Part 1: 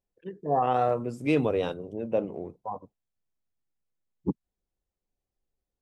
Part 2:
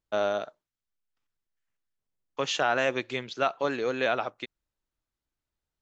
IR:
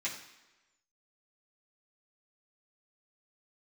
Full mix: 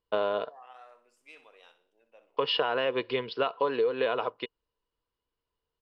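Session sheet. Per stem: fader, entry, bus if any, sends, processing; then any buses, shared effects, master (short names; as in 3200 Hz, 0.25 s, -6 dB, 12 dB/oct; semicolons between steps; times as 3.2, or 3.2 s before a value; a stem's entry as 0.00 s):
-16.5 dB, 0.00 s, no send, echo send -11.5 dB, HPF 1300 Hz 12 dB/oct
0.0 dB, 0.00 s, no send, no echo send, Chebyshev low-pass 5200 Hz, order 8; small resonant body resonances 460/1000/2900 Hz, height 15 dB, ringing for 45 ms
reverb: off
echo: feedback echo 62 ms, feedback 41%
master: compressor 10:1, threshold -23 dBFS, peak gain reduction 10 dB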